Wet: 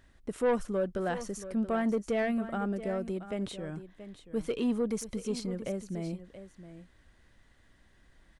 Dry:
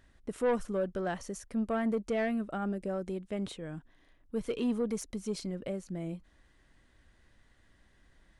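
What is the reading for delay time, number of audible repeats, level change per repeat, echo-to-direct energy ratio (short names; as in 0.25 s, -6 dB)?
0.679 s, 1, no steady repeat, -13.0 dB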